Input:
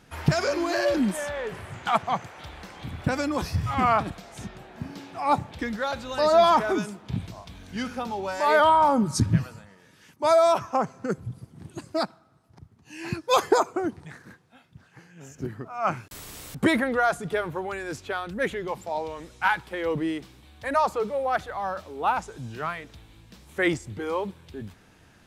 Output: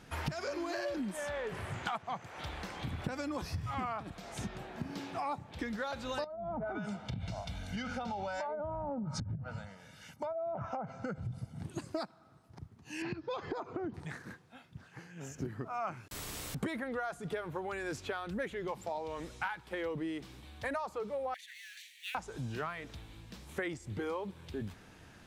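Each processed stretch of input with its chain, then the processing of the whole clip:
6.24–11.63 treble ducked by the level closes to 300 Hz, closed at -15 dBFS + comb 1.4 ms, depth 68% + compressor 10:1, threshold -31 dBFS
13.02–13.94 LPF 4600 Hz 24 dB/oct + low shelf 290 Hz +9.5 dB + compressor 3:1, threshold -35 dBFS
21.34–22.15 G.711 law mismatch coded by mu + steep high-pass 1800 Hz 96 dB/oct + notch 5100 Hz, Q 7.1
whole clip: high shelf 10000 Hz -3.5 dB; compressor 12:1, threshold -34 dBFS

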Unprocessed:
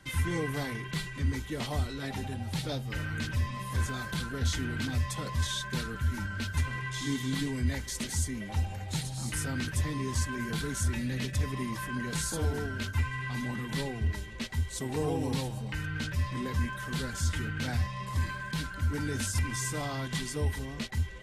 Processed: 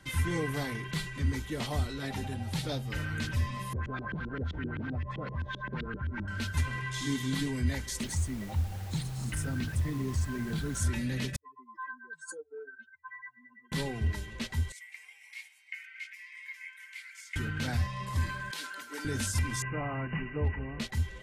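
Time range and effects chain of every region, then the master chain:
3.73–6.28 air absorption 50 m + compressor 2:1, threshold -35 dBFS + LFO low-pass saw up 7.7 Hz 260–3100 Hz
8–10.8 formant sharpening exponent 1.5 + added noise pink -50 dBFS
11.36–13.72 spectral contrast raised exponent 3.3 + HPF 510 Hz 24 dB/oct + core saturation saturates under 360 Hz
14.72–17.36 ladder high-pass 2100 Hz, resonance 90% + bell 3800 Hz -5.5 dB 0.43 oct
18.51–19.05 tilt shelf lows -3.5 dB, about 1300 Hz + compressor 4:1, threshold -32 dBFS + HPF 310 Hz 24 dB/oct
19.62–20.8 brick-wall FIR low-pass 3000 Hz + hard clip -21.5 dBFS
whole clip: dry

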